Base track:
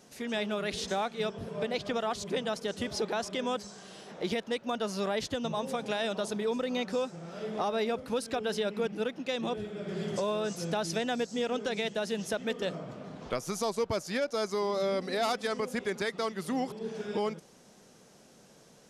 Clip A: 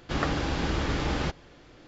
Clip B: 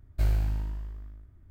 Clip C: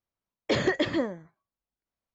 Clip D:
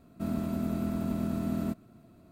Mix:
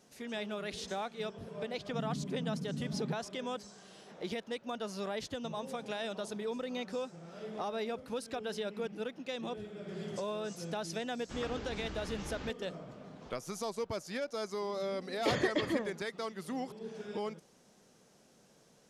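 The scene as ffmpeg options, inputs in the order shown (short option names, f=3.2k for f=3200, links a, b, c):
-filter_complex "[1:a]asplit=2[a][b];[0:a]volume=-6.5dB[c];[a]asuperpass=centerf=190:order=8:qfactor=1.7,atrim=end=1.87,asetpts=PTS-STARTPTS,volume=-2dB,afade=t=in:d=0.004:c=hsin,afade=t=out:st=1.866:d=0.004:c=hsin,adelay=1830[d];[b]atrim=end=1.87,asetpts=PTS-STARTPTS,volume=-15.5dB,afade=t=in:d=0.004:c=hsin,afade=t=out:st=1.866:d=0.004:c=hsin,adelay=11200[e];[3:a]atrim=end=2.14,asetpts=PTS-STARTPTS,volume=-6dB,afade=t=in:d=0.004:c=hsin,afade=t=out:st=2.136:d=0.004:c=hsin,adelay=650916S[f];[c][d][e][f]amix=inputs=4:normalize=0"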